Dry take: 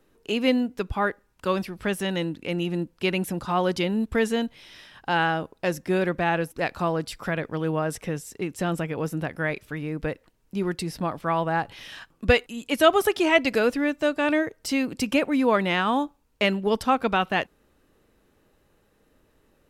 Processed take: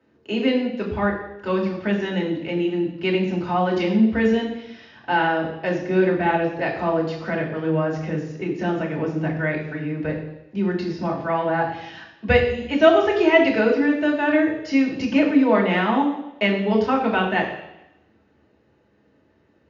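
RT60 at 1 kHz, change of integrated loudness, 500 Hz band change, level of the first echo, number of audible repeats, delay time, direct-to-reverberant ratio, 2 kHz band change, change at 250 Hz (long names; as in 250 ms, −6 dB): 0.90 s, +4.0 dB, +4.0 dB, no echo audible, no echo audible, no echo audible, −3.0 dB, +2.5 dB, +5.5 dB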